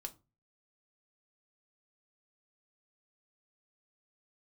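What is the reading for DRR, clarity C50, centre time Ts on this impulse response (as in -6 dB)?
4.5 dB, 19.5 dB, 5 ms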